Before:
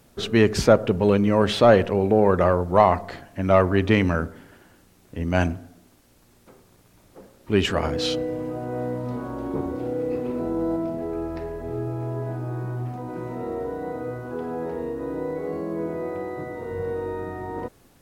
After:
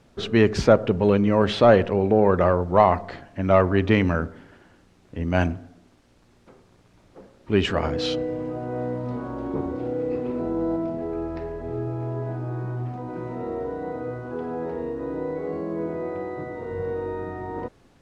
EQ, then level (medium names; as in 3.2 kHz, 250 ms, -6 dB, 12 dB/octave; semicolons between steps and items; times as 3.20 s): distance through air 54 m; treble shelf 10 kHz -8.5 dB; 0.0 dB